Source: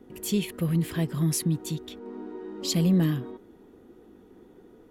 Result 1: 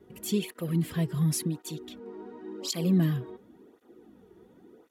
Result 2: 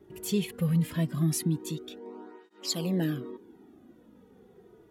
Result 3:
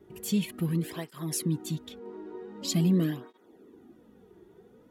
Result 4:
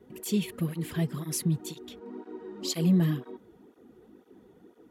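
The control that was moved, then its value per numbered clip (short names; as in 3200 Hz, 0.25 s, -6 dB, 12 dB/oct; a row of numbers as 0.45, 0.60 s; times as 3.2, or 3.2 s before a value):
tape flanging out of phase, nulls at: 0.92, 0.2, 0.45, 2 Hz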